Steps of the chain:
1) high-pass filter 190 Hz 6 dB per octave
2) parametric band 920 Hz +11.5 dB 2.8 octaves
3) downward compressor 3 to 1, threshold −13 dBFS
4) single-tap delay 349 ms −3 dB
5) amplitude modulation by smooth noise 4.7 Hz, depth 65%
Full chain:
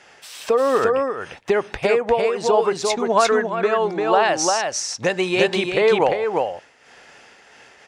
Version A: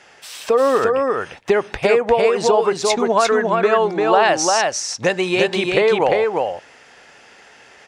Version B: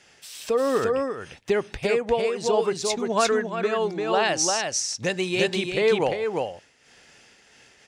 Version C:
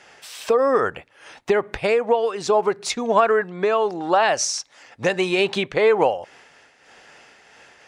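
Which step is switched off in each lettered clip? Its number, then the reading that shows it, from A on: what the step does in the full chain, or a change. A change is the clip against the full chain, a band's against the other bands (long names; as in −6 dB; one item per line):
5, change in integrated loudness +2.5 LU
2, 1 kHz band −4.5 dB
4, change in integrated loudness −1.0 LU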